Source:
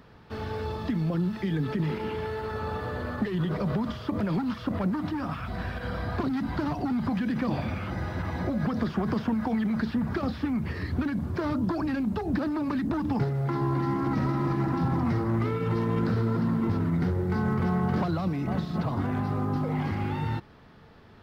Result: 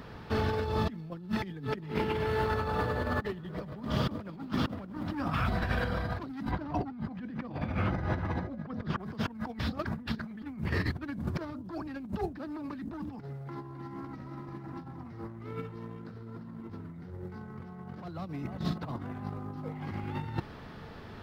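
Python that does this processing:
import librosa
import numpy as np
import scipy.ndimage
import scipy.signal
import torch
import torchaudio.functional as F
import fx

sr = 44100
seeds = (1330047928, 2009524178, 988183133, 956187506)

y = fx.echo_crushed(x, sr, ms=100, feedback_pct=80, bits=10, wet_db=-12, at=(1.85, 5.15))
y = fx.lowpass(y, sr, hz=2100.0, slope=6, at=(6.51, 8.99))
y = fx.edit(y, sr, fx.reverse_span(start_s=9.59, length_s=0.83), tone=tone)
y = fx.over_compress(y, sr, threshold_db=-34.0, ratio=-0.5)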